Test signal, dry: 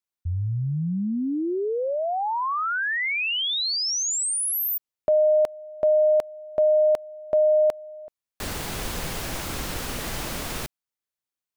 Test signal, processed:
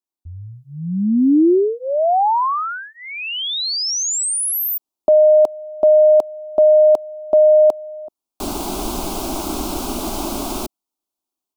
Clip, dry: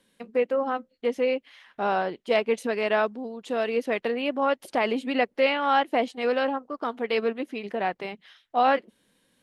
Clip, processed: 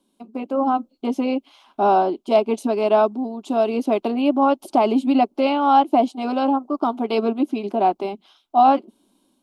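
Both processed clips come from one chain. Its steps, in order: peaking EQ 410 Hz +10.5 dB 2 oct; static phaser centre 490 Hz, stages 6; level rider gain up to 8.5 dB; trim -3 dB

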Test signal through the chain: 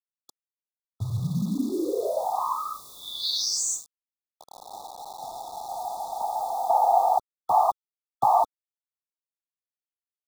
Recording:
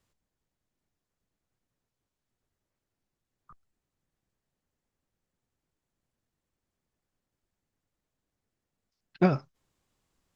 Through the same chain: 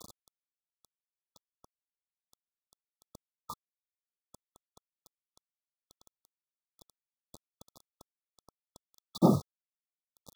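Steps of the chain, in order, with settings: upward compressor, threshold -25 dBFS; noise-vocoded speech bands 16; bit crusher 7-bit; brick-wall FIR band-stop 1.3–3.4 kHz

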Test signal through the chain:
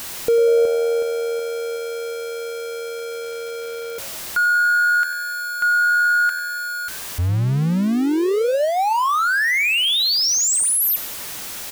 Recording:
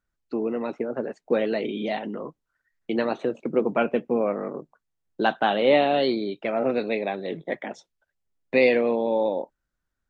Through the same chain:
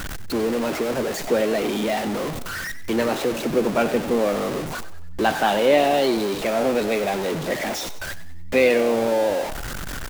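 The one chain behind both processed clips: jump at every zero crossing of -23.5 dBFS; frequency-shifting echo 95 ms, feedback 46%, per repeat +82 Hz, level -14.5 dB

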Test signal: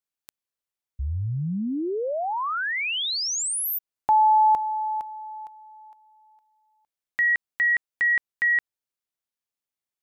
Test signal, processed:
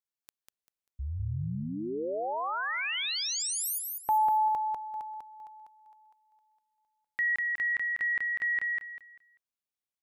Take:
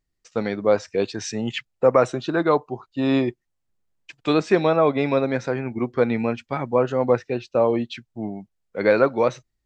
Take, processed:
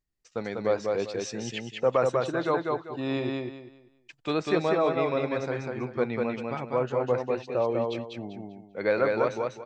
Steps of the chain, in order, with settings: dynamic bell 240 Hz, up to -4 dB, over -34 dBFS, Q 1.7; on a send: feedback delay 196 ms, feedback 27%, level -3 dB; on the sum: trim -7 dB

